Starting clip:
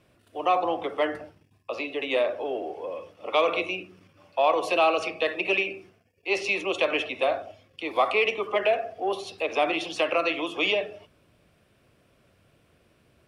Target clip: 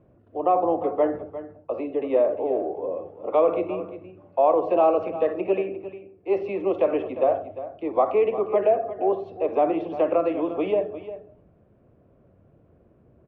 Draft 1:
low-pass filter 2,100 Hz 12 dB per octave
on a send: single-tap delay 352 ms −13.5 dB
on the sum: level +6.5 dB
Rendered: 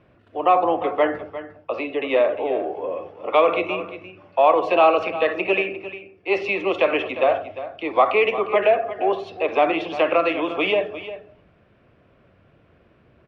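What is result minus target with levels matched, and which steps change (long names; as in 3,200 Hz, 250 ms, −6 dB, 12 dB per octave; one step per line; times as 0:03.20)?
2,000 Hz band +14.5 dB
change: low-pass filter 670 Hz 12 dB per octave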